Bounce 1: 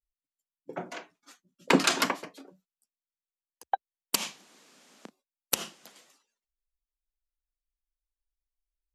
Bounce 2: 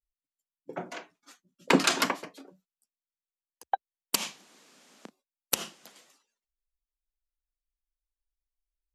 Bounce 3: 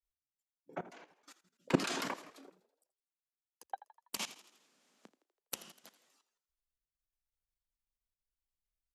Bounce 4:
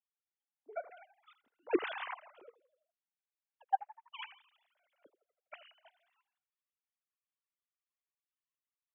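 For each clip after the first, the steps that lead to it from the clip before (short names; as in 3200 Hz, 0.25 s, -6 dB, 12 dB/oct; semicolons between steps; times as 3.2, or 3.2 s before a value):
nothing audible
level quantiser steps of 18 dB; frequency-shifting echo 82 ms, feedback 55%, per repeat +47 Hz, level -16.5 dB; gain -1.5 dB
sine-wave speech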